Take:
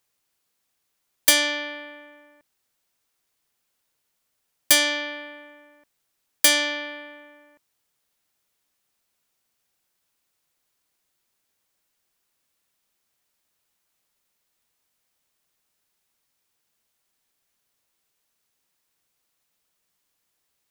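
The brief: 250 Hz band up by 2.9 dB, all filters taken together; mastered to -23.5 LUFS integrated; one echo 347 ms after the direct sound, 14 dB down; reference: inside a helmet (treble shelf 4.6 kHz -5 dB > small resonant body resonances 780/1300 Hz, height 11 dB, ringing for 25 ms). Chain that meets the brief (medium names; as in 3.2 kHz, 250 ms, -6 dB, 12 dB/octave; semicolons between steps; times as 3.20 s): peaking EQ 250 Hz +3.5 dB; treble shelf 4.6 kHz -5 dB; delay 347 ms -14 dB; small resonant body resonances 780/1300 Hz, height 11 dB, ringing for 25 ms; trim -1 dB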